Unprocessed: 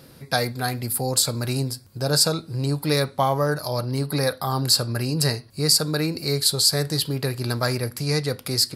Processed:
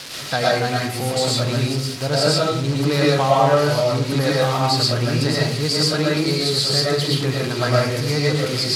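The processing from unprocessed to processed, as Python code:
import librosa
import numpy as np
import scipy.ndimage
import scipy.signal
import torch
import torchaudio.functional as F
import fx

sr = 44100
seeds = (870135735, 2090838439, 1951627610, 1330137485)

y = x + 0.5 * 10.0 ** (-13.5 / 20.0) * np.diff(np.sign(x), prepend=np.sign(x[:1]))
y = scipy.signal.sosfilt(scipy.signal.butter(2, 3800.0, 'lowpass', fs=sr, output='sos'), y)
y = fx.rev_freeverb(y, sr, rt60_s=0.57, hf_ratio=0.35, predelay_ms=75, drr_db=-4.5)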